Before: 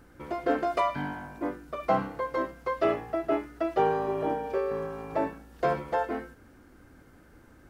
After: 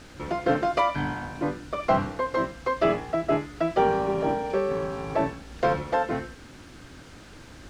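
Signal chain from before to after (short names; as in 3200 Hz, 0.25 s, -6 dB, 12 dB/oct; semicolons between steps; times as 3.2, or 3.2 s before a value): octaver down 1 oct, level -4 dB; high shelf 3500 Hz +11 dB; in parallel at -1.5 dB: compressor, threshold -37 dBFS, peak gain reduction 16.5 dB; on the sum: requantised 8-bit, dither triangular; air absorption 100 m; gain +1.5 dB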